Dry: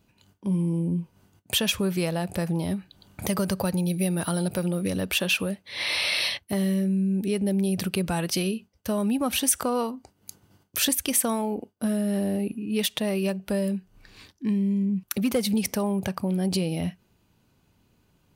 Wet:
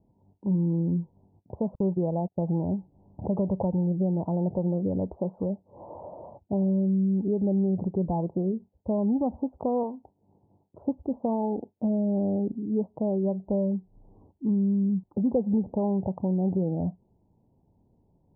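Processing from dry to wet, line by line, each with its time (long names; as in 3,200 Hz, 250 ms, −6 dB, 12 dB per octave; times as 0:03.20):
0:01.75–0:02.42: noise gate −31 dBFS, range −41 dB
0:09.83–0:10.82: spectral tilt +1.5 dB per octave
whole clip: Butterworth low-pass 930 Hz 72 dB per octave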